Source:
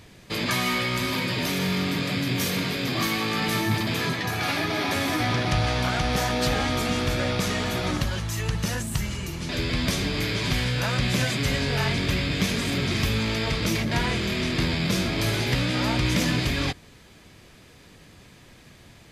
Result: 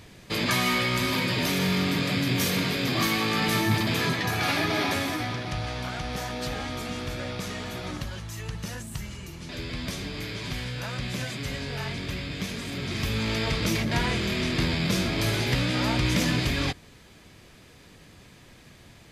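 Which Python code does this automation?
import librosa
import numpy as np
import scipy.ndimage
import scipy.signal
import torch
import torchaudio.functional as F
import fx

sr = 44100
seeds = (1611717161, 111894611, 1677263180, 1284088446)

y = fx.gain(x, sr, db=fx.line((4.82, 0.5), (5.39, -8.0), (12.71, -8.0), (13.34, -1.0)))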